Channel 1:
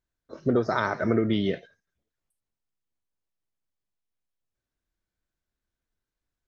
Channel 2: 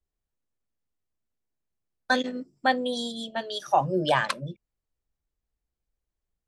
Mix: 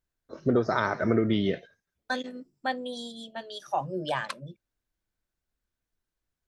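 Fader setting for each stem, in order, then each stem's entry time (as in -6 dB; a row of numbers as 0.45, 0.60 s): -0.5, -7.0 dB; 0.00, 0.00 s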